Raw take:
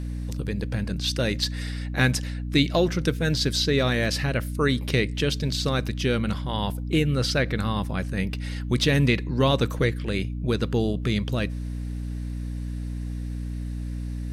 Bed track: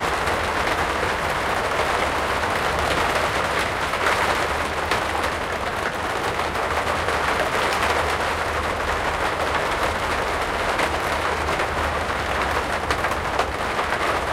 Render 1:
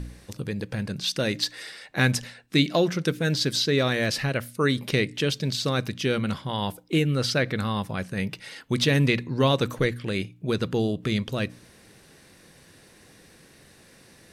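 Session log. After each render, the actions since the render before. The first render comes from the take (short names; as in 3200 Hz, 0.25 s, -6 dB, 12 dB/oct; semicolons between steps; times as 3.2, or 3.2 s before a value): de-hum 60 Hz, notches 5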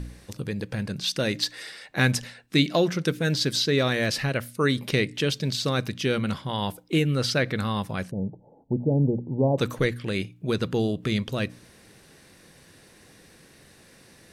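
8.11–9.58 Chebyshev low-pass 870 Hz, order 6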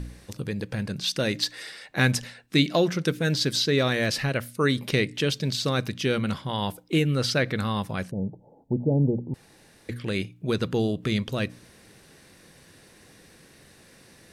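9.34–9.89 room tone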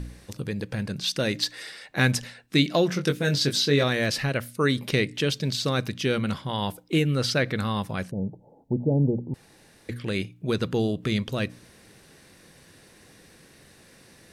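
2.87–3.84 doubler 21 ms -6 dB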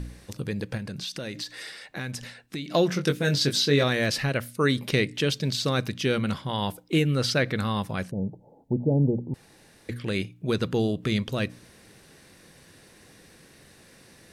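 0.77–2.71 compressor 5:1, threshold -31 dBFS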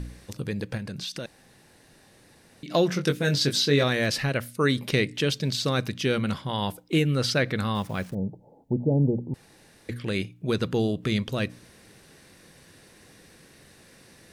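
1.26–2.63 room tone; 7.75–8.15 level-crossing sampler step -47.5 dBFS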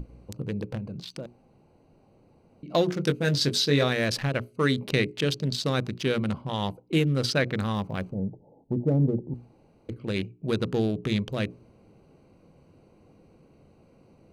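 Wiener smoothing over 25 samples; notches 60/120/180/240/300/360/420 Hz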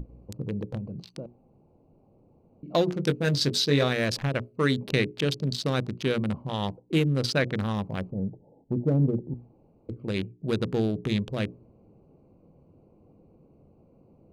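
Wiener smoothing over 25 samples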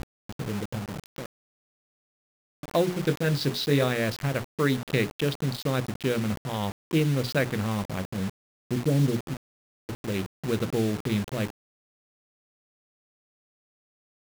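Gaussian blur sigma 1.8 samples; requantised 6-bit, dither none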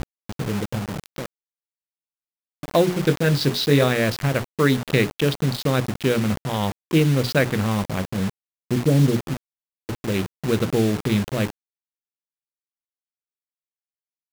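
gain +6 dB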